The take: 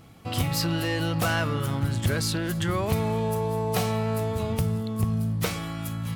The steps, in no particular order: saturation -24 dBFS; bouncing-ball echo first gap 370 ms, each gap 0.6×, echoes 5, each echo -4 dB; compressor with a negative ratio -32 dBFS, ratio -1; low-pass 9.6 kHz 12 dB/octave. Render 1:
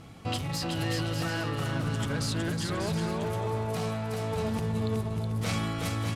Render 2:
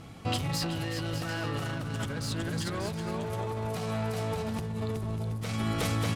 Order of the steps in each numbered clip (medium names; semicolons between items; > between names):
saturation > low-pass > compressor with a negative ratio > bouncing-ball echo; low-pass > saturation > bouncing-ball echo > compressor with a negative ratio